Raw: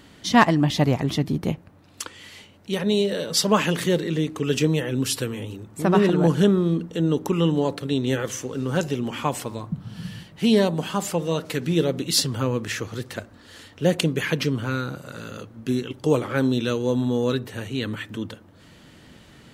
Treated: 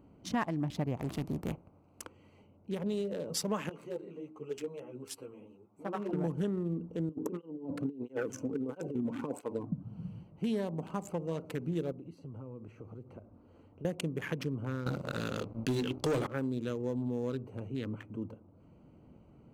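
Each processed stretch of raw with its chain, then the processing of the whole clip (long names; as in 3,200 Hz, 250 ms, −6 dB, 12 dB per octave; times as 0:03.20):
0:00.96–0:02.05: compressing power law on the bin magnitudes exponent 0.64 + hard clipping −18.5 dBFS
0:03.69–0:06.13: high-pass filter 630 Hz 6 dB per octave + string-ensemble chorus
0:07.09–0:09.83: hollow resonant body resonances 280/450/1,500 Hz, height 9 dB, ringing for 40 ms + compressor whose output falls as the input rises −22 dBFS, ratio −0.5 + through-zero flanger with one copy inverted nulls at 1.5 Hz, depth 2.7 ms
0:11.92–0:13.85: high-shelf EQ 3,300 Hz −7.5 dB + downward compressor 4 to 1, threshold −35 dBFS
0:14.86–0:16.27: mains-hum notches 50/100/150/200/250/300/350/400 Hz + leveller curve on the samples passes 3 + parametric band 4,200 Hz +9.5 dB 0.91 octaves
whole clip: adaptive Wiener filter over 25 samples; parametric band 4,000 Hz −8 dB 0.81 octaves; downward compressor 3 to 1, threshold −24 dBFS; level −7.5 dB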